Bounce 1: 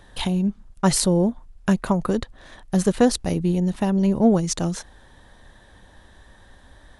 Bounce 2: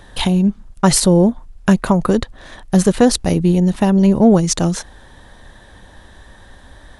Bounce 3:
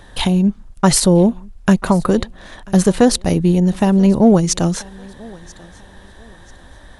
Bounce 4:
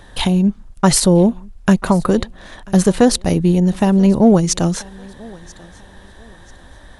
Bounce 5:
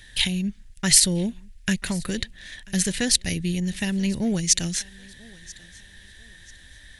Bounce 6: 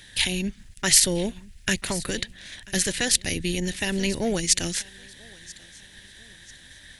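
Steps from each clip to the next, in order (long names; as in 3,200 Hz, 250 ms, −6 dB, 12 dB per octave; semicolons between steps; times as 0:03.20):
boost into a limiter +8.5 dB; level −1 dB
feedback echo with a high-pass in the loop 988 ms, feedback 33%, high-pass 180 Hz, level −23 dB
no processing that can be heard
drawn EQ curve 100 Hz 0 dB, 790 Hz −13 dB, 1,200 Hz −13 dB, 1,800 Hz +9 dB; level −8 dB
ceiling on every frequency bin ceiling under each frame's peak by 13 dB; level −1 dB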